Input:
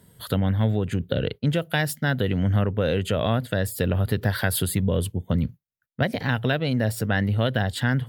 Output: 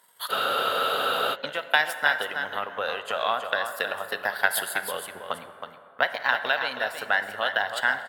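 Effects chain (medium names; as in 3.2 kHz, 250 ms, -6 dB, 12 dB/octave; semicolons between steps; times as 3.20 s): transient shaper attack +5 dB, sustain -11 dB; resonant high-pass 970 Hz, resonance Q 1.9; delay 320 ms -8 dB; plate-style reverb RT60 2.7 s, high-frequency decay 0.45×, DRR 10 dB; spectral freeze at 0.33 s, 1.01 s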